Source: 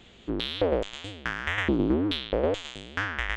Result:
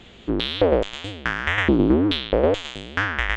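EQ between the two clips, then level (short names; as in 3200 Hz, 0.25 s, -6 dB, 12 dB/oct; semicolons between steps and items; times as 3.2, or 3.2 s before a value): high shelf 7300 Hz -8 dB; +7.0 dB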